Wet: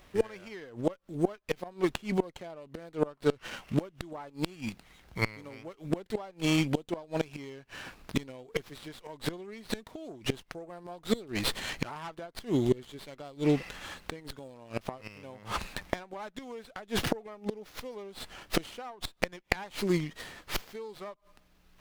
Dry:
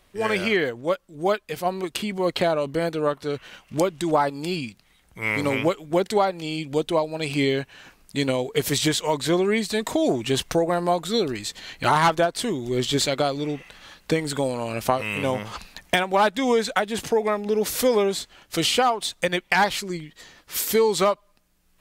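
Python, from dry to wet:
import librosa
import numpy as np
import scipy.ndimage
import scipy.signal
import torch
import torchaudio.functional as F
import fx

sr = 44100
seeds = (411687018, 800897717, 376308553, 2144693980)

y = fx.gate_flip(x, sr, shuts_db=-17.0, range_db=-26)
y = fx.running_max(y, sr, window=5)
y = y * 10.0 ** (3.5 / 20.0)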